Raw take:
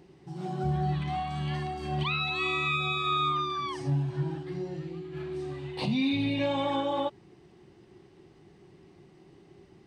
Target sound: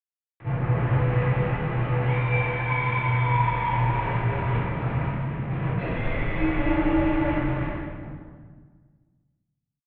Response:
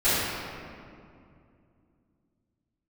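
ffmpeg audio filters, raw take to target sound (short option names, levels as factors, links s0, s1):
-filter_complex "[0:a]asettb=1/sr,asplit=3[s0][s1][s2];[s0]atrim=end=4.294[s3];[s1]atrim=start=4.29:end=6.06,asetpts=PTS-STARTPTS,afade=t=in:d=0.004:c=qsin,afade=t=out:st=1.766:d=0.004:c=qsin,aecho=1:1:1.4:0.91,atrim=end_sample=78057[s4];[s2]atrim=start=6.056[s5];[s3][s4]acrossfade=d=0.004:c1=hsin:c2=qsin[s6];[s6][s5]acrossfade=d=0.004:c1=qsin:c2=hsin,aecho=1:1:260|598|1037|1609|2351:0.631|0.398|0.251|0.158|0.1,acrusher=bits=4:mix=0:aa=0.000001,equalizer=f=390:w=4.8:g=13,acompressor=threshold=0.0398:ratio=6,asoftclip=type=tanh:threshold=0.0251[s7];[1:a]atrim=start_sample=2205,asetrate=70560,aresample=44100[s8];[s7][s8]afir=irnorm=-1:irlink=0,highpass=f=190:t=q:w=0.5412,highpass=f=190:t=q:w=1.307,lowpass=f=2600:t=q:w=0.5176,lowpass=f=2600:t=q:w=0.7071,lowpass=f=2600:t=q:w=1.932,afreqshift=-250"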